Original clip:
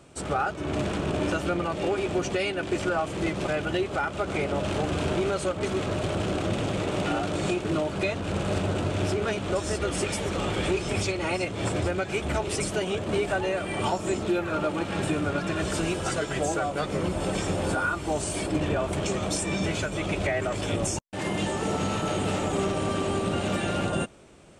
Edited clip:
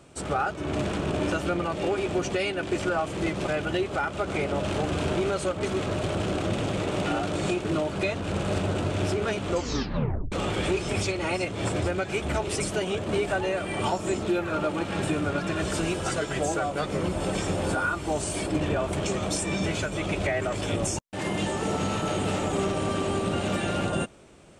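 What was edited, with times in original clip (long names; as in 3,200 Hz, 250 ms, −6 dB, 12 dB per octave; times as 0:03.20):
0:09.49: tape stop 0.83 s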